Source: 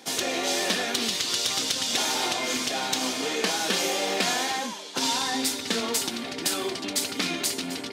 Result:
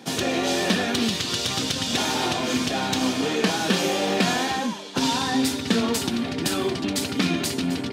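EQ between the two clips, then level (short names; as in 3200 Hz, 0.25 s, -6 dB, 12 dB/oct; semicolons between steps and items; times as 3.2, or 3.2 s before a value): tone controls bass +13 dB, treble -6 dB; notch 2100 Hz, Q 19; +3.0 dB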